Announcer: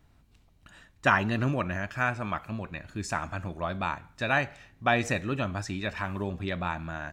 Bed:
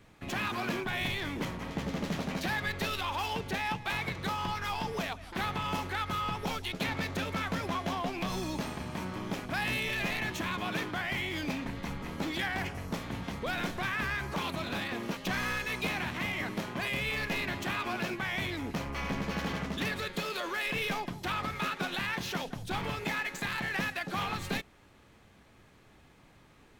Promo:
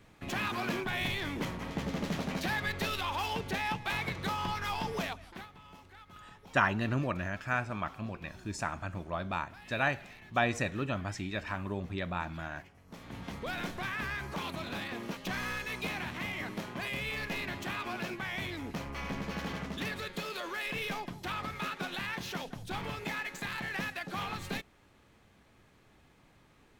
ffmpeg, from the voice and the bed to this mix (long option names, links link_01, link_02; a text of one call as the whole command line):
ffmpeg -i stem1.wav -i stem2.wav -filter_complex "[0:a]adelay=5500,volume=-4dB[link_01];[1:a]volume=16.5dB,afade=type=out:start_time=5.05:duration=0.43:silence=0.1,afade=type=in:start_time=12.85:duration=0.45:silence=0.141254[link_02];[link_01][link_02]amix=inputs=2:normalize=0" out.wav